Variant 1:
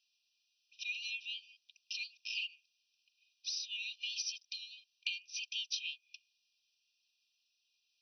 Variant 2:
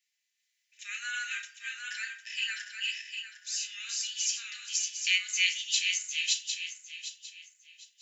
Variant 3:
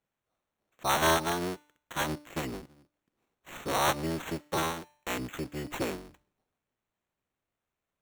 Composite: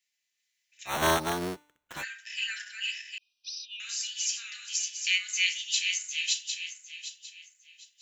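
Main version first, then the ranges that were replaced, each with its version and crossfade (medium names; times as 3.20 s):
2
0.93–1.97 s: from 3, crossfade 0.16 s
3.18–3.80 s: from 1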